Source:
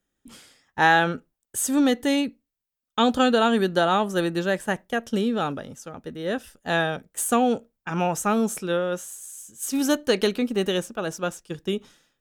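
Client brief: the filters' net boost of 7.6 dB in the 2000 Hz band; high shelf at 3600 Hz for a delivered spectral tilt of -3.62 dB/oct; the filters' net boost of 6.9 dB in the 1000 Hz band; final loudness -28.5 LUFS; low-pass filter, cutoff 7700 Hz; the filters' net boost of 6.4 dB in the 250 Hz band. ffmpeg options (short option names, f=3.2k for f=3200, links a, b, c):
-af "lowpass=7.7k,equalizer=f=250:t=o:g=7,equalizer=f=1k:t=o:g=7.5,equalizer=f=2k:t=o:g=8,highshelf=f=3.6k:g=-5,volume=-10dB"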